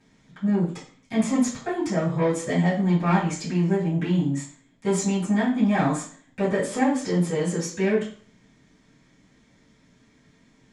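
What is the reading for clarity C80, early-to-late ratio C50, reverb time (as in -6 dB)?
12.0 dB, 7.0 dB, 0.50 s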